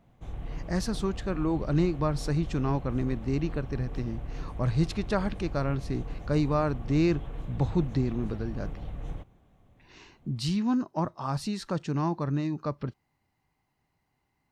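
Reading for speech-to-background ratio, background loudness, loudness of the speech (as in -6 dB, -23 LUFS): 10.5 dB, -40.5 LUFS, -30.0 LUFS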